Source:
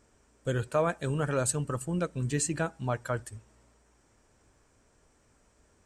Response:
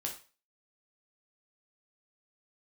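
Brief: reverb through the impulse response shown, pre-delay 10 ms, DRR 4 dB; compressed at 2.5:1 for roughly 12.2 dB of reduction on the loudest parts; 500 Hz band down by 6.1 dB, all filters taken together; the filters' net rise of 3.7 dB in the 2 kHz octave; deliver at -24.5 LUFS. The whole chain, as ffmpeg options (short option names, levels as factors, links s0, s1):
-filter_complex "[0:a]equalizer=f=500:t=o:g=-8,equalizer=f=2000:t=o:g=6,acompressor=threshold=0.00631:ratio=2.5,asplit=2[s0][s1];[1:a]atrim=start_sample=2205,adelay=10[s2];[s1][s2]afir=irnorm=-1:irlink=0,volume=0.596[s3];[s0][s3]amix=inputs=2:normalize=0,volume=7.08"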